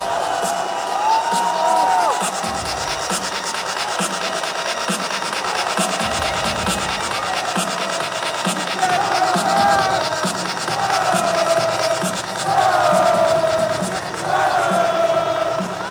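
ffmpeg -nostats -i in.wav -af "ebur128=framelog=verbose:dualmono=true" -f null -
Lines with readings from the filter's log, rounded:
Integrated loudness:
  I:         -15.7 LUFS
  Threshold: -25.7 LUFS
Loudness range:
  LRA:         3.4 LU
  Threshold: -35.7 LUFS
  LRA low:   -17.5 LUFS
  LRA high:  -14.1 LUFS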